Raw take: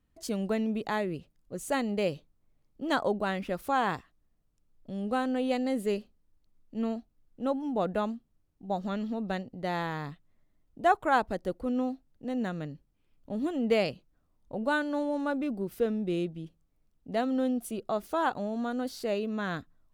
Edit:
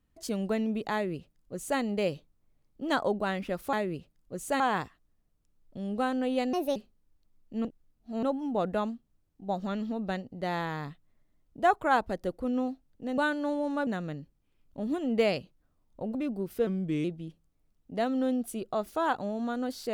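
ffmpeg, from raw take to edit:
-filter_complex "[0:a]asplit=12[s0][s1][s2][s3][s4][s5][s6][s7][s8][s9][s10][s11];[s0]atrim=end=3.732[s12];[s1]atrim=start=0.928:end=1.802[s13];[s2]atrim=start=3.728:end=5.664[s14];[s3]atrim=start=5.66:end=5.97,asetpts=PTS-STARTPTS,asetrate=59976,aresample=44100,atrim=end_sample=10052,asetpts=PTS-STARTPTS[s15];[s4]atrim=start=5.966:end=6.862[s16];[s5]atrim=start=6.858:end=7.442,asetpts=PTS-STARTPTS,areverse[s17];[s6]atrim=start=7.438:end=12.392[s18];[s7]atrim=start=14.668:end=15.362[s19];[s8]atrim=start=12.388:end=14.672[s20];[s9]atrim=start=15.358:end=15.884[s21];[s10]atrim=start=15.88:end=16.21,asetpts=PTS-STARTPTS,asetrate=38808,aresample=44100[s22];[s11]atrim=start=16.206[s23];[s12][s13]acrossfade=d=0.004:c1=hsin:c2=hsin[s24];[s24][s14]acrossfade=d=0.004:c1=hsin:c2=hsin[s25];[s25][s15]acrossfade=d=0.004:c1=hsin:c2=hsin[s26];[s26][s16]acrossfade=d=0.004:c1=hsin:c2=hsin[s27];[s27][s17]acrossfade=d=0.004:c1=hsin:c2=hsin[s28];[s28][s18]acrossfade=d=0.004:c1=hsin:c2=hsin[s29];[s29][s19]acrossfade=d=0.004:c1=hsin:c2=hsin[s30];[s30][s20]acrossfade=d=0.004:c1=hsin:c2=hsin[s31];[s31][s21]acrossfade=d=0.004:c1=hsin:c2=hsin[s32];[s32][s22]acrossfade=d=0.004:c1=hsin:c2=hsin[s33];[s33][s23]acrossfade=d=0.004:c1=hsin:c2=hsin"

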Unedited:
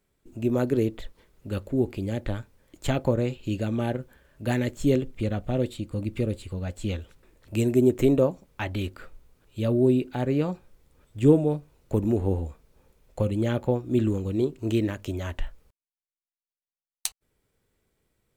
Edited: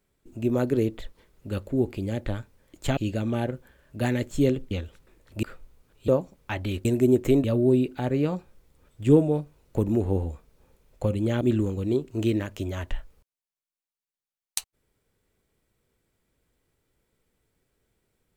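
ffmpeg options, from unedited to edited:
-filter_complex "[0:a]asplit=8[s0][s1][s2][s3][s4][s5][s6][s7];[s0]atrim=end=2.972[s8];[s1]atrim=start=3.428:end=5.172[s9];[s2]atrim=start=6.868:end=7.592[s10];[s3]atrim=start=8.948:end=9.602[s11];[s4]atrim=start=8.178:end=8.952[s12];[s5]atrim=start=7.588:end=8.182[s13];[s6]atrim=start=9.598:end=13.572[s14];[s7]atrim=start=13.888[s15];[s8][s9]acrossfade=d=0.004:c1=hsin:c2=hsin[s16];[s16][s10]acrossfade=d=0.004:c1=hsin:c2=hsin[s17];[s17][s11]acrossfade=d=0.004:c1=hsin:c2=hsin[s18];[s18][s12]acrossfade=d=0.004:c1=hsin:c2=hsin[s19];[s19][s13]acrossfade=d=0.004:c1=hsin:c2=hsin[s20];[s20][s14]acrossfade=d=0.004:c1=hsin:c2=hsin[s21];[s21][s15]acrossfade=d=0.004:c1=hsin:c2=hsin"

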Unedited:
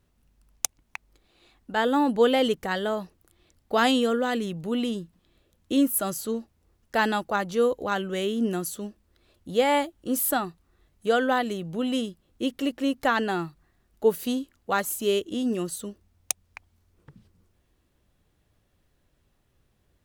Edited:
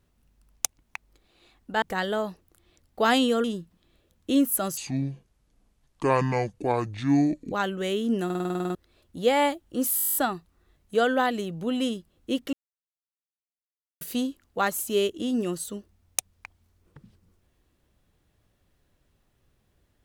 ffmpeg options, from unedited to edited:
-filter_complex "[0:a]asplit=27[s0][s1][s2][s3][s4][s5][s6][s7][s8][s9][s10][s11][s12][s13][s14][s15][s16][s17][s18][s19][s20][s21][s22][s23][s24][s25][s26];[s0]atrim=end=1.822[s27];[s1]atrim=start=2.548:end=4.172[s28];[s2]atrim=start=4.858:end=6.194[s29];[s3]atrim=start=6.19:end=7.84,asetpts=PTS-STARTPTS,asetrate=26460,aresample=44100[s30];[s4]atrim=start=7.836:end=8.622[s31];[s5]atrim=start=8.568:end=8.622[s32];[s6]atrim=start=8.568:end=8.622[s33];[s7]atrim=start=8.568:end=8.622[s34];[s8]atrim=start=8.568:end=8.622[s35];[s9]atrim=start=8.568:end=8.622[s36];[s10]atrim=start=8.568:end=8.622[s37];[s11]atrim=start=8.568:end=8.622[s38];[s12]atrim=start=8.568:end=8.622[s39];[s13]atrim=start=8.568:end=8.622[s40];[s14]atrim=start=9.068:end=10.302[s41];[s15]atrim=start=10.278:end=10.302[s42];[s16]atrim=start=10.278:end=10.302[s43];[s17]atrim=start=10.278:end=10.302[s44];[s18]atrim=start=10.278:end=10.302[s45];[s19]atrim=start=10.278:end=10.302[s46];[s20]atrim=start=10.278:end=10.302[s47];[s21]atrim=start=10.278:end=10.302[s48];[s22]atrim=start=10.278:end=10.302[s49];[s23]atrim=start=10.278:end=10.302[s50];[s24]atrim=start=10.278:end=12.65,asetpts=PTS-STARTPTS,afade=t=out:st=2.368:d=0.004:c=hsin[s51];[s25]atrim=start=12.65:end=14.13,asetpts=PTS-STARTPTS,volume=0[s52];[s26]atrim=start=14.13,asetpts=PTS-STARTPTS,afade=t=in:d=0.004:c=hsin[s53];[s27][s28]acrossfade=d=0.004:c1=hsin:c2=hsin[s54];[s54][s29]acrossfade=d=0.004:c1=hsin:c2=hsin[s55];[s55][s30]acrossfade=d=0.004:c1=hsin:c2=hsin[s56];[s56][s31]acrossfade=d=0.004:c1=hsin:c2=hsin[s57];[s57][s32]acrossfade=d=0.004:c1=hsin:c2=hsin[s58];[s58][s33]acrossfade=d=0.004:c1=hsin:c2=hsin[s59];[s59][s34]acrossfade=d=0.004:c1=hsin:c2=hsin[s60];[s60][s35]acrossfade=d=0.004:c1=hsin:c2=hsin[s61];[s61][s36]acrossfade=d=0.004:c1=hsin:c2=hsin[s62];[s62][s37]acrossfade=d=0.004:c1=hsin:c2=hsin[s63];[s63][s38]acrossfade=d=0.004:c1=hsin:c2=hsin[s64];[s64][s39]acrossfade=d=0.004:c1=hsin:c2=hsin[s65];[s65][s40]acrossfade=d=0.004:c1=hsin:c2=hsin[s66];[s66][s41]acrossfade=d=0.004:c1=hsin:c2=hsin[s67];[s67][s42]acrossfade=d=0.004:c1=hsin:c2=hsin[s68];[s68][s43]acrossfade=d=0.004:c1=hsin:c2=hsin[s69];[s69][s44]acrossfade=d=0.004:c1=hsin:c2=hsin[s70];[s70][s45]acrossfade=d=0.004:c1=hsin:c2=hsin[s71];[s71][s46]acrossfade=d=0.004:c1=hsin:c2=hsin[s72];[s72][s47]acrossfade=d=0.004:c1=hsin:c2=hsin[s73];[s73][s48]acrossfade=d=0.004:c1=hsin:c2=hsin[s74];[s74][s49]acrossfade=d=0.004:c1=hsin:c2=hsin[s75];[s75][s50]acrossfade=d=0.004:c1=hsin:c2=hsin[s76];[s51][s52][s53]concat=n=3:v=0:a=1[s77];[s76][s77]acrossfade=d=0.004:c1=hsin:c2=hsin"

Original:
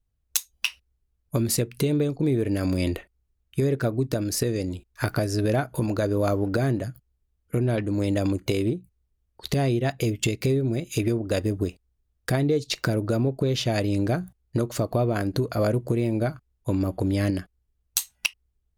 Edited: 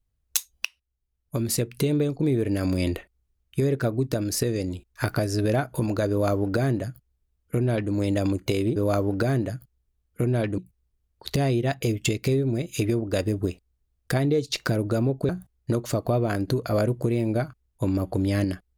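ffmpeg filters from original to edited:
-filter_complex "[0:a]asplit=5[s0][s1][s2][s3][s4];[s0]atrim=end=0.65,asetpts=PTS-STARTPTS,afade=t=out:st=0.646:d=0.004:c=hsin:silence=0.0891251[s5];[s1]atrim=start=0.65:end=8.762,asetpts=PTS-STARTPTS,afade=t=in:d=1.05:silence=0.0891251[s6];[s2]atrim=start=6.098:end=7.922[s7];[s3]atrim=start=8.758:end=13.472[s8];[s4]atrim=start=14.148[s9];[s5][s6]concat=n=2:v=0:a=1[s10];[s10][s7]acrossfade=d=0.004:c1=hsin:c2=hsin[s11];[s11][s8]acrossfade=d=0.004:c1=hsin:c2=hsin[s12];[s12][s9]acrossfade=d=0.004:c1=hsin:c2=hsin"

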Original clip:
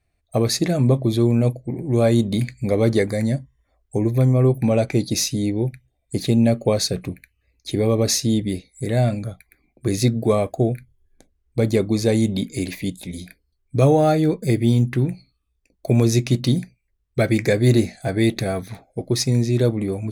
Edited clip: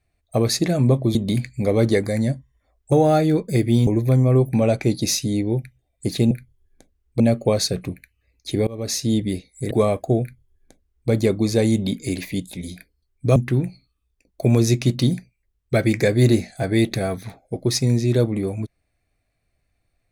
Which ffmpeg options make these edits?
-filter_complex "[0:a]asplit=9[s0][s1][s2][s3][s4][s5][s6][s7][s8];[s0]atrim=end=1.152[s9];[s1]atrim=start=2.188:end=3.962[s10];[s2]atrim=start=13.858:end=14.812[s11];[s3]atrim=start=3.958:end=6.402[s12];[s4]atrim=start=10.708:end=11.602[s13];[s5]atrim=start=6.398:end=7.87,asetpts=PTS-STARTPTS,afade=t=out:st=1.468:d=0.004:c=hsin:silence=0.0668344[s14];[s6]atrim=start=7.87:end=8.912,asetpts=PTS-STARTPTS,afade=t=in:d=0.48:silence=0.0668344[s15];[s7]atrim=start=10.208:end=13.862[s16];[s8]atrim=start=14.808[s17];[s9][s10]acrossfade=d=0.004:c1=hsin:c2=hsin[s18];[s18][s11]acrossfade=d=0.004:c1=hsin:c2=hsin[s19];[s19][s12]acrossfade=d=0.004:c1=hsin:c2=hsin[s20];[s20][s13]acrossfade=d=0.004:c1=hsin:c2=hsin[s21];[s14][s15]concat=n=2:v=0:a=1[s22];[s21][s22]acrossfade=d=0.004:c1=hsin:c2=hsin[s23];[s23][s16]acrossfade=d=0.004:c1=hsin:c2=hsin[s24];[s24][s17]acrossfade=d=0.004:c1=hsin:c2=hsin"

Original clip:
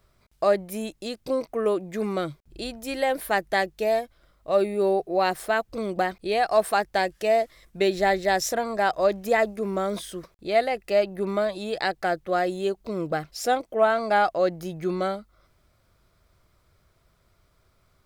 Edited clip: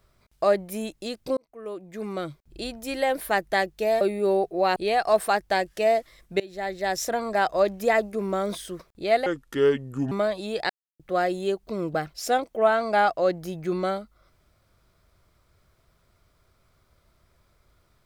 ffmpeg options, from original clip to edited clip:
-filter_complex "[0:a]asplit=9[s0][s1][s2][s3][s4][s5][s6][s7][s8];[s0]atrim=end=1.37,asetpts=PTS-STARTPTS,afade=t=out:st=1.366:d=0.004:c=hsin[s9];[s1]atrim=start=1.37:end=4.012,asetpts=PTS-STARTPTS,afade=t=in:d=1.25[s10];[s2]atrim=start=4.568:end=5.322[s11];[s3]atrim=start=6.198:end=7.84,asetpts=PTS-STARTPTS,afade=t=out:st=1.638:d=0.004:c=hsin:silence=0.0668344[s12];[s4]atrim=start=7.84:end=10.704,asetpts=PTS-STARTPTS,afade=t=in:d=0.8:silence=0.0668344[s13];[s5]atrim=start=10.7:end=11.29,asetpts=PTS-STARTPTS,asetrate=30429,aresample=44100[s14];[s6]atrim=start=11.286:end=11.87,asetpts=PTS-STARTPTS,afade=t=out:st=0.58:d=0.004:c=hsin[s15];[s7]atrim=start=11.87:end=12.17,asetpts=PTS-STARTPTS,volume=0[s16];[s8]atrim=start=12.17,asetpts=PTS-STARTPTS,afade=t=in:d=0.004:c=hsin[s17];[s9][s10]concat=n=2:v=0:a=1[s18];[s18][s11]acrossfade=d=0.004:c1=hsin:c2=hsin[s19];[s12][s13]concat=n=2:v=0:a=1[s20];[s19][s20]acrossfade=d=0.004:c1=hsin:c2=hsin[s21];[s21][s14]acrossfade=d=0.004:c1=hsin:c2=hsin[s22];[s15][s16][s17]concat=n=3:v=0:a=1[s23];[s22][s23]acrossfade=d=0.004:c1=hsin:c2=hsin"

